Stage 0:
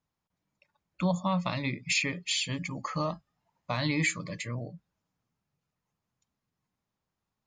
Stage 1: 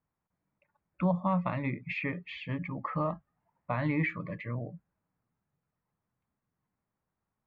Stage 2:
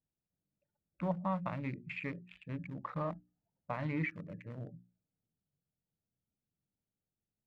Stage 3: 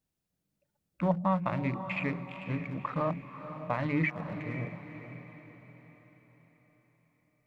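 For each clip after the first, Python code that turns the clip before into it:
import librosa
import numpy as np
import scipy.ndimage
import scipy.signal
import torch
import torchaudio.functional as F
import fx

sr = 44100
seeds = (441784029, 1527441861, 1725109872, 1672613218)

y1 = scipy.signal.sosfilt(scipy.signal.butter(4, 2100.0, 'lowpass', fs=sr, output='sos'), x)
y2 = fx.wiener(y1, sr, points=41)
y2 = fx.hum_notches(y2, sr, base_hz=60, count=6)
y2 = F.gain(torch.from_numpy(y2), -5.0).numpy()
y3 = fx.hum_notches(y2, sr, base_hz=50, count=3)
y3 = fx.echo_diffused(y3, sr, ms=517, feedback_pct=46, wet_db=-10.0)
y3 = F.gain(torch.from_numpy(y3), 7.0).numpy()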